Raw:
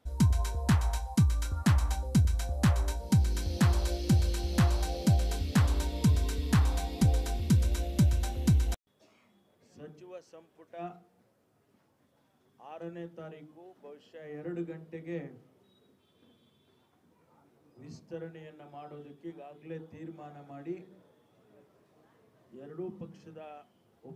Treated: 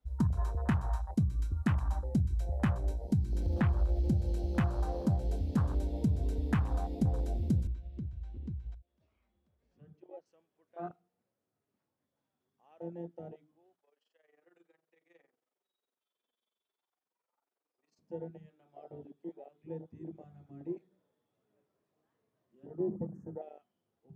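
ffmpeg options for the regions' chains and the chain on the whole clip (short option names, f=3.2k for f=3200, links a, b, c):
-filter_complex "[0:a]asettb=1/sr,asplit=3[a][b][c];[a]atrim=end=3.404[d];[b]atrim=start=3.4:end=4.08,asetpts=PTS-STARTPTS,afade=t=in:d=0.004:c=qsin,afade=t=out:st=0.676:d=0.004:c=qsin,aeval=exprs='val(0)+0.5*0.0119*sgn(val(0))':c=same,acrossover=split=4000[e][f];[f]acompressor=threshold=-47dB:ratio=4:attack=1:release=60[g];[e][g]amix=inputs=2:normalize=0,asubboost=boost=11:cutoff=130[h];[c]atrim=start=4.076[i];[d][h]acrossfade=d=0.004:c1=hsin:c2=qsin[j];[j][i]acrossfade=d=0.004:c1=qsin:c2=hsin,asettb=1/sr,asplit=3[k][l][m];[k]atrim=end=7.674[n];[l]atrim=start=7.67:end=10.26,asetpts=PTS-STARTPTS,afade=t=in:d=0.004:c=qsin,afade=t=out:st=2.586:d=0.004:c=qsin,lowpass=3.4k,acompressor=threshold=-41dB:ratio=3:attack=3.2:release=140:knee=1:detection=peak,aecho=1:1:990:0.0841,atrim=end_sample=114219[o];[m]atrim=start=10.256[p];[n][o]acrossfade=d=0.004:c1=hsin:c2=qsin[q];[q][p]acrossfade=d=0.004:c1=qsin:c2=hsin,asettb=1/sr,asplit=3[r][s][t];[r]atrim=end=13.754[u];[s]atrim=start=13.75:end=17.99,asetpts=PTS-STARTPTS,afade=t=in:d=0.004:c=qsin,afade=t=out:st=4.236:d=0.004:c=qsin,highpass=650,tremolo=f=22:d=0.824[v];[t]atrim=start=17.986[w];[u][v]acrossfade=d=0.004:c1=hsin:c2=qsin[x];[x][w]acrossfade=d=0.004:c1=qsin:c2=hsin,asettb=1/sr,asplit=3[y][z][aa];[y]atrim=end=22.804[ab];[z]atrim=start=22.8:end=23.42,asetpts=PTS-STARTPTS,afade=t=in:d=0.004:c=qsin,afade=t=out:st=0.616:d=0.004:c=qsin,acontrast=61,asuperstop=centerf=3400:order=8:qfactor=0.7[ac];[aa]atrim=start=23.416[ad];[ab][ac]acrossfade=d=0.004:c1=hsin:c2=qsin[ae];[ae][ad]acrossfade=d=0.004:c1=qsin:c2=hsin,bandreject=f=60:t=h:w=6,bandreject=f=120:t=h:w=6,bandreject=f=180:t=h:w=6,afwtdn=0.0158,acompressor=threshold=-25dB:ratio=6"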